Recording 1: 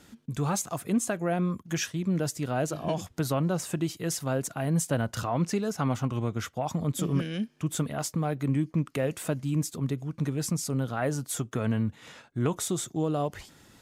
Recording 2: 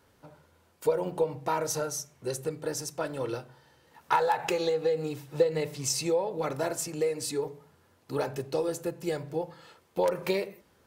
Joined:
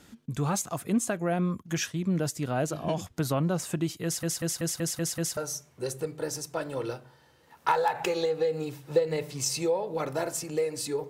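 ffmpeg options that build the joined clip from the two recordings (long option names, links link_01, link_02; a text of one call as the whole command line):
ffmpeg -i cue0.wav -i cue1.wav -filter_complex "[0:a]apad=whole_dur=11.09,atrim=end=11.09,asplit=7[link_01][link_02][link_03][link_04][link_05][link_06][link_07];[link_01]atrim=end=4.232[link_08];[link_02]atrim=start=4.038:end=4.232[link_09];[link_03]atrim=start=4.038:end=4.232[link_10];[link_04]atrim=start=4.038:end=4.232[link_11];[link_05]atrim=start=4.038:end=4.232[link_12];[link_06]atrim=start=4.038:end=4.232[link_13];[link_07]atrim=start=4.038:end=4.232[link_14];[1:a]atrim=start=1.808:end=7.53[link_15];[link_08][link_09]acrossfade=duration=0.004:curve1=hsin:curve2=hsin[link_16];[link_16][link_10]acrossfade=duration=0.004:curve1=hsin:curve2=hsin[link_17];[link_17][link_11]acrossfade=duration=0.004:curve1=hsin:curve2=hsin[link_18];[link_18][link_12]acrossfade=duration=0.004:curve1=hsin:curve2=hsin[link_19];[link_19][link_13]acrossfade=duration=0.004:curve1=hsin:curve2=hsin[link_20];[link_20][link_14]acrossfade=duration=0.004:curve1=hsin:curve2=hsin[link_21];[link_21][link_15]acrossfade=duration=0.004:curve1=hsin:curve2=hsin" out.wav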